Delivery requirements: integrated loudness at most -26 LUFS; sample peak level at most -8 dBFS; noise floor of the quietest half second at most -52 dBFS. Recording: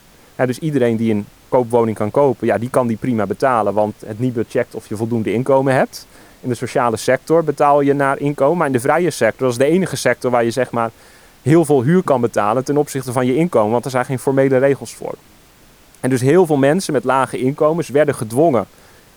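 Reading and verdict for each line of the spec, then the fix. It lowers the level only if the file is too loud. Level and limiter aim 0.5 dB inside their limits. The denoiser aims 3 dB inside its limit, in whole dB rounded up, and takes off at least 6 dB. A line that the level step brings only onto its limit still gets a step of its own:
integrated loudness -16.5 LUFS: fail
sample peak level -1.5 dBFS: fail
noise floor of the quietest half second -47 dBFS: fail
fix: trim -10 dB

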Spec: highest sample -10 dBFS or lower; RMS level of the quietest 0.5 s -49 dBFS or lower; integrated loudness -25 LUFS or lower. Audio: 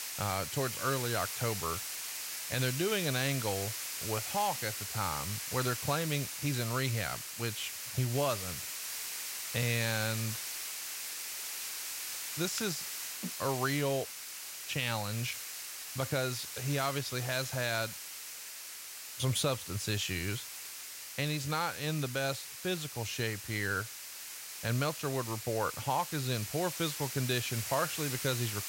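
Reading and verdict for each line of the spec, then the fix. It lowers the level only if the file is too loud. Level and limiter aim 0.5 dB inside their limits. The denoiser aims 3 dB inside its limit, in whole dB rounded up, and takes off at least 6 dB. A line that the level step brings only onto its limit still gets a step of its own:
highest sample -18.0 dBFS: pass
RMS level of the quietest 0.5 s -46 dBFS: fail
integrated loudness -34.0 LUFS: pass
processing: noise reduction 6 dB, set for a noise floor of -46 dBFS

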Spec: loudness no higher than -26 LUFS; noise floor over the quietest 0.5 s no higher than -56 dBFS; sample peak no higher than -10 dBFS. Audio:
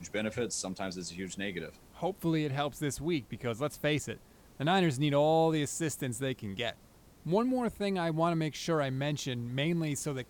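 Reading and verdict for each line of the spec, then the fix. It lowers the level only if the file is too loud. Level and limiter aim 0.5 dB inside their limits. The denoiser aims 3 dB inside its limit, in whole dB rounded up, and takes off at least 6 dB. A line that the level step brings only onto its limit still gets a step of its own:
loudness -32.5 LUFS: pass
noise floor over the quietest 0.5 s -58 dBFS: pass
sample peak -16.0 dBFS: pass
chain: none needed

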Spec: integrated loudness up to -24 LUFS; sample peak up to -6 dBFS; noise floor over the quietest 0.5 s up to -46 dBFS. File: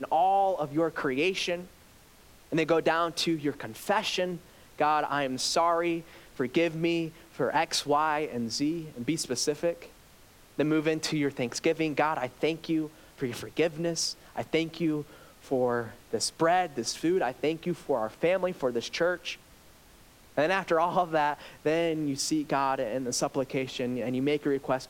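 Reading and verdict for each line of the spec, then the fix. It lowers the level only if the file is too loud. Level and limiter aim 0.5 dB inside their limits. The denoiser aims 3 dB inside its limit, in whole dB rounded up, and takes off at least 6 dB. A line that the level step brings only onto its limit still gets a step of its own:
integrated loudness -29.0 LUFS: pass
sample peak -13.0 dBFS: pass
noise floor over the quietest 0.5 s -56 dBFS: pass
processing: none needed

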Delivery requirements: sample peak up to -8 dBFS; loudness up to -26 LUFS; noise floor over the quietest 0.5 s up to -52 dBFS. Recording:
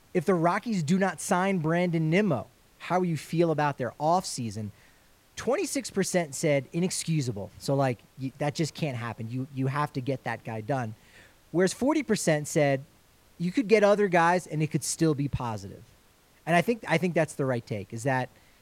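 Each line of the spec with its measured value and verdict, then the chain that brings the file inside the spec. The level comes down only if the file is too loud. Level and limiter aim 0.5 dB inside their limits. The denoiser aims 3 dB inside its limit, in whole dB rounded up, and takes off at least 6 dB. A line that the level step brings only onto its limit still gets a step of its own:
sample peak -9.0 dBFS: pass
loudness -27.5 LUFS: pass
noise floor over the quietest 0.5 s -60 dBFS: pass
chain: none needed

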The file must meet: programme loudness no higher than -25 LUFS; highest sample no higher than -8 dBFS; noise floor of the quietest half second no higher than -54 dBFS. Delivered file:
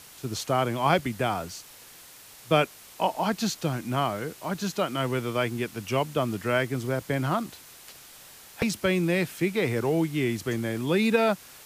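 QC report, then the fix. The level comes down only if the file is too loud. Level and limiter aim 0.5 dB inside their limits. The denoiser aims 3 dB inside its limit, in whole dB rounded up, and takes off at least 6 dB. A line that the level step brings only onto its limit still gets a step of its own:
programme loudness -27.0 LUFS: pass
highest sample -8.5 dBFS: pass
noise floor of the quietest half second -49 dBFS: fail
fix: noise reduction 8 dB, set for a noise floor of -49 dBFS

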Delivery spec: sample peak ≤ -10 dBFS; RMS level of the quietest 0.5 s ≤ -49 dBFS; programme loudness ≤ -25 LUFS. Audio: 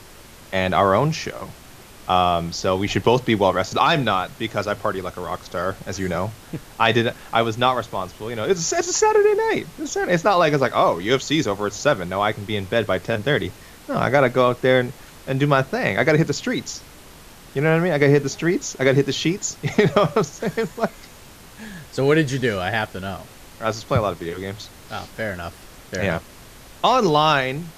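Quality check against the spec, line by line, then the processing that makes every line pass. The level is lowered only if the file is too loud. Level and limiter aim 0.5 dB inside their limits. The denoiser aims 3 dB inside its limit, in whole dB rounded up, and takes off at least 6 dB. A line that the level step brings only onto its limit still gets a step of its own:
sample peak -2.0 dBFS: fail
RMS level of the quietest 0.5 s -44 dBFS: fail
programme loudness -20.5 LUFS: fail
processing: noise reduction 6 dB, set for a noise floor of -44 dBFS; trim -5 dB; peak limiter -10.5 dBFS

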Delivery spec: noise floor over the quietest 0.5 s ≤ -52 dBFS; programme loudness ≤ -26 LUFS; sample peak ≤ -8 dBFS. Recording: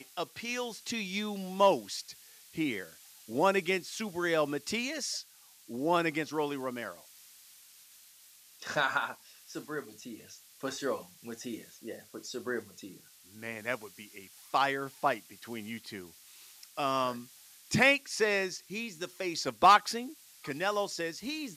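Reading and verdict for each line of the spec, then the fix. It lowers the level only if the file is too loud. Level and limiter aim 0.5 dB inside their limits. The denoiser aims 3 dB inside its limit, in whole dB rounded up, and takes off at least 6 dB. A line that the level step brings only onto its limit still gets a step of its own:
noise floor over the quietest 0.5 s -58 dBFS: pass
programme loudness -31.5 LUFS: pass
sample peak -12.0 dBFS: pass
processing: none needed

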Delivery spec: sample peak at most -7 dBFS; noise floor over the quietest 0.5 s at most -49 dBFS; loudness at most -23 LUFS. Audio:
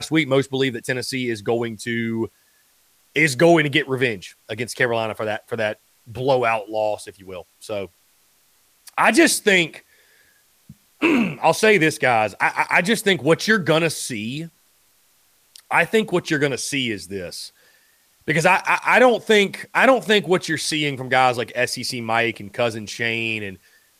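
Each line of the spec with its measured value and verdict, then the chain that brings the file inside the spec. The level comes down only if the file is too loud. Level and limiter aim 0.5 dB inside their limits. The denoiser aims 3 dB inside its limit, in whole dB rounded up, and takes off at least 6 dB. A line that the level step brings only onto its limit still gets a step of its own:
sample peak -3.5 dBFS: fail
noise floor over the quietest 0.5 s -60 dBFS: pass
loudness -19.5 LUFS: fail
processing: trim -4 dB

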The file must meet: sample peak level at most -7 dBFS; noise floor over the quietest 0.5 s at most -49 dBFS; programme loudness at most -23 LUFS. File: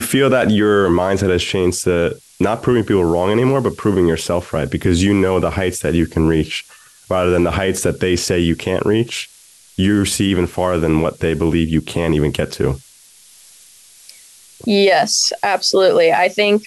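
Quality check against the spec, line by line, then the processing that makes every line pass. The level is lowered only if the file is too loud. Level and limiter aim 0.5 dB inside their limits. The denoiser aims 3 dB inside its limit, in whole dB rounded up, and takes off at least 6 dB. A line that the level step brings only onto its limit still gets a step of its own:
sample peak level -4.5 dBFS: fail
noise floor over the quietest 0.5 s -46 dBFS: fail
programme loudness -16.0 LUFS: fail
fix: trim -7.5 dB

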